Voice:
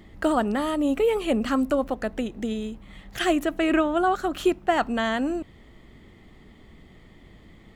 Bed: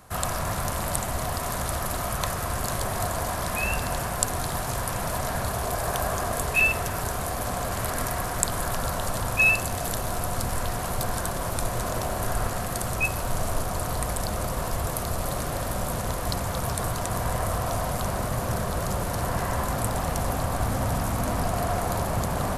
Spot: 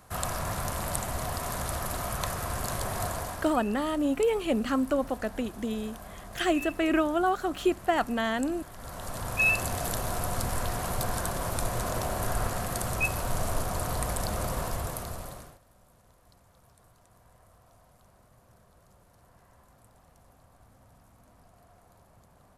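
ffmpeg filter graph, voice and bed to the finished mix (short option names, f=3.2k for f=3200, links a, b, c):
-filter_complex "[0:a]adelay=3200,volume=-3.5dB[a];[1:a]volume=12.5dB,afade=t=out:st=3.08:d=0.53:silence=0.177828,afade=t=in:st=8.75:d=0.91:silence=0.149624,afade=t=out:st=14.55:d=1.04:silence=0.0316228[b];[a][b]amix=inputs=2:normalize=0"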